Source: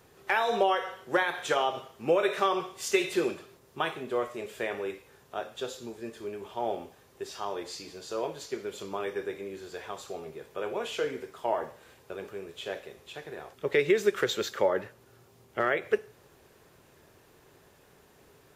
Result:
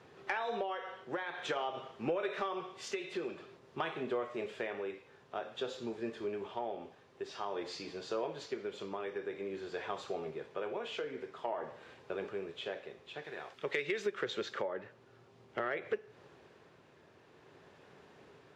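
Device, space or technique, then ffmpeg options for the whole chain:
AM radio: -filter_complex "[0:a]asettb=1/sr,asplit=3[link_01][link_02][link_03];[link_01]atrim=end=13.244[link_04];[link_02]atrim=start=13.24:end=14.06,asetpts=PTS-STARTPTS,afade=type=in:duration=0.004:curve=qsin,afade=type=out:start_time=0.816:duration=0.004:curve=qsin,tiltshelf=frequency=1100:gain=-5.5[link_05];[link_03]atrim=start=14.056[link_06];[link_04][link_05]acrossfade=duration=0.004:curve1=hsin:curve2=qsin[link_07];[link_07][link_06]acrossfade=duration=0.004:curve1=qsin:curve2=hsin,highpass=110,lowpass=3900,acompressor=threshold=-33dB:ratio=5,asoftclip=type=tanh:threshold=-21.5dB,tremolo=f=0.5:d=0.37,volume=1.5dB"

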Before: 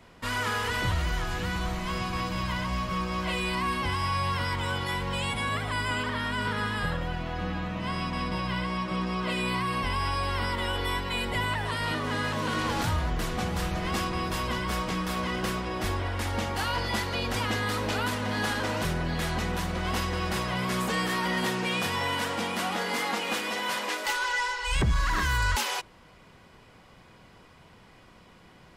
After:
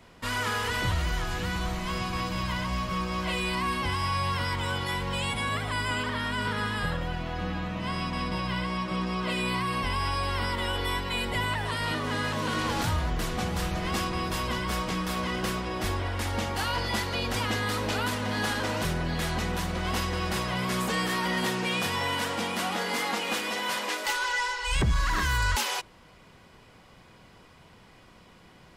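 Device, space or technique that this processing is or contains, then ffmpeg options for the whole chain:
exciter from parts: -filter_complex "[0:a]asplit=2[link_01][link_02];[link_02]highpass=2200,asoftclip=type=tanh:threshold=-27.5dB,volume=-13.5dB[link_03];[link_01][link_03]amix=inputs=2:normalize=0"

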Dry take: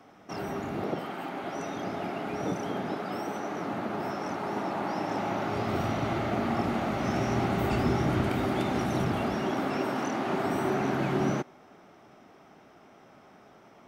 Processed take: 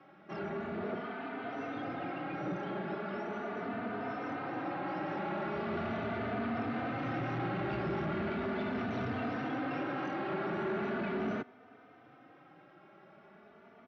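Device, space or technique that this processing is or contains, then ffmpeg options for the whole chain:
barber-pole flanger into a guitar amplifier: -filter_complex "[0:a]asettb=1/sr,asplit=3[link_01][link_02][link_03];[link_01]atrim=end=8.924[link_04];[link_02]atrim=start=8.92:end=9.48,asetpts=PTS-STARTPTS,afade=type=in:duration=0.004:curve=qsin,afade=type=out:start_time=0.556:duration=0.004:curve=qsin,equalizer=frequency=7400:width_type=o:width=1.4:gain=5[link_05];[link_03]atrim=start=9.476[link_06];[link_04][link_05]acrossfade=duration=0.004:curve1=hsin:curve2=qsin[link_07];[link_07][link_06]acrossfade=duration=0.004:curve1=qsin:curve2=hsin,asplit=2[link_08][link_09];[link_09]adelay=3.2,afreqshift=0.39[link_10];[link_08][link_10]amix=inputs=2:normalize=1,asoftclip=type=tanh:threshold=-30dB,highpass=100,equalizer=frequency=930:width_type=q:width=4:gain=-4,equalizer=frequency=1500:width_type=q:width=4:gain=4,equalizer=frequency=3300:width_type=q:width=4:gain=-3,lowpass=frequency=3700:width=0.5412,lowpass=frequency=3700:width=1.3066"

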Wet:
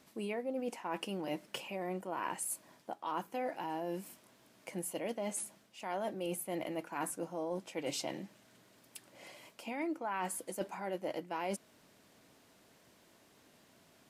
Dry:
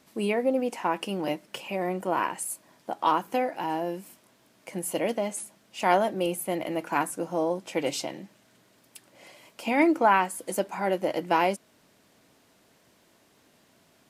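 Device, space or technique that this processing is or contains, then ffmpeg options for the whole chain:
compression on the reversed sound: -af "areverse,acompressor=threshold=-32dB:ratio=8,areverse,volume=-2.5dB"

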